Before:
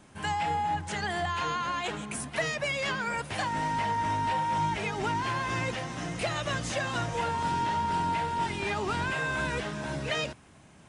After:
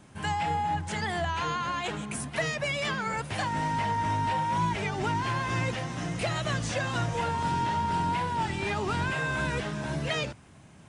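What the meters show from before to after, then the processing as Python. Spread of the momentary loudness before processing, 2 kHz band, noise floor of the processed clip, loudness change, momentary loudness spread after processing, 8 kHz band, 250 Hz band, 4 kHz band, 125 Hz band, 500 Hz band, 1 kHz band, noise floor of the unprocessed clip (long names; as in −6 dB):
5 LU, 0.0 dB, −52 dBFS, +0.5 dB, 4 LU, 0.0 dB, +2.5 dB, 0.0 dB, +4.5 dB, +0.5 dB, 0.0 dB, −54 dBFS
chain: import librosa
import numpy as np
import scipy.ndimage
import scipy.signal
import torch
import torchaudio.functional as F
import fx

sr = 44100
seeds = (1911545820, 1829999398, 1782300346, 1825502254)

y = fx.peak_eq(x, sr, hz=120.0, db=5.0, octaves=1.5)
y = fx.record_warp(y, sr, rpm=33.33, depth_cents=100.0)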